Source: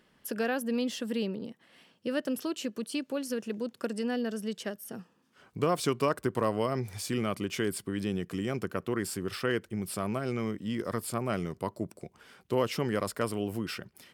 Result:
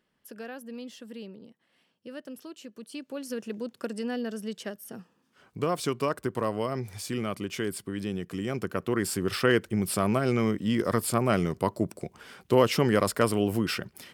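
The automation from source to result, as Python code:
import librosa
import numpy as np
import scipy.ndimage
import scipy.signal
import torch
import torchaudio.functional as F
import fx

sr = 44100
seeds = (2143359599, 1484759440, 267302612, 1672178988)

y = fx.gain(x, sr, db=fx.line((2.67, -10.0), (3.38, -0.5), (8.26, -0.5), (9.41, 7.0)))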